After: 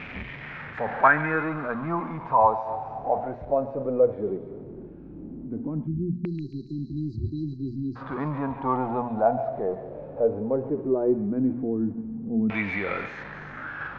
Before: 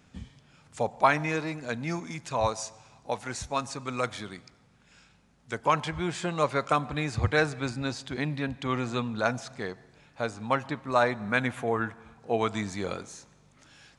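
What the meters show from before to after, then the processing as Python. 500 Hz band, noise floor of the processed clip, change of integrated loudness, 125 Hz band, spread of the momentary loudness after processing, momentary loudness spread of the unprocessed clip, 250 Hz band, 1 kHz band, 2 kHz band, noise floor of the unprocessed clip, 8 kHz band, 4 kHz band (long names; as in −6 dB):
+4.5 dB, −41 dBFS, +2.5 dB, +1.0 dB, 15 LU, 14 LU, +5.5 dB, +3.0 dB, +1.5 dB, −61 dBFS, below −30 dB, below −10 dB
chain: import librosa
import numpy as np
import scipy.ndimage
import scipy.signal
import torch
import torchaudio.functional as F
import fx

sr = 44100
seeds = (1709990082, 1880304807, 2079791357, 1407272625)

p1 = x + 0.5 * 10.0 ** (-33.0 / 20.0) * np.sign(x)
p2 = fx.spec_erase(p1, sr, start_s=5.87, length_s=2.09, low_hz=400.0, high_hz=3900.0)
p3 = fx.hum_notches(p2, sr, base_hz=60, count=4)
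p4 = fx.dynamic_eq(p3, sr, hz=100.0, q=0.74, threshold_db=-46.0, ratio=4.0, max_db=-5)
p5 = fx.level_steps(p4, sr, step_db=19)
p6 = p4 + (p5 * 10.0 ** (-1.0 / 20.0))
p7 = fx.filter_lfo_lowpass(p6, sr, shape='saw_down', hz=0.16, low_hz=210.0, high_hz=2400.0, q=5.0)
p8 = fx.air_absorb(p7, sr, metres=160.0)
p9 = p8 + fx.echo_stepped(p8, sr, ms=138, hz=2900.0, octaves=0.7, feedback_pct=70, wet_db=-5.5, dry=0)
p10 = fx.hpss(p9, sr, part='harmonic', gain_db=5)
y = p10 * 10.0 ** (-5.5 / 20.0)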